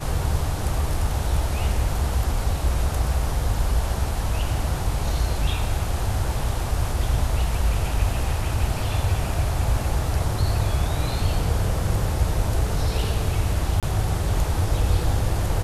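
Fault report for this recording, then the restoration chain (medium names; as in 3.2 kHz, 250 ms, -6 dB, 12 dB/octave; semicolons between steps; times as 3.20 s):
13.80–13.83 s: dropout 27 ms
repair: interpolate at 13.80 s, 27 ms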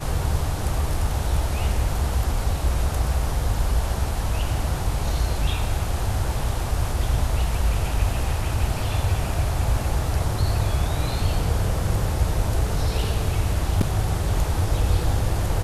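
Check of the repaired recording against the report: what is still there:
nothing left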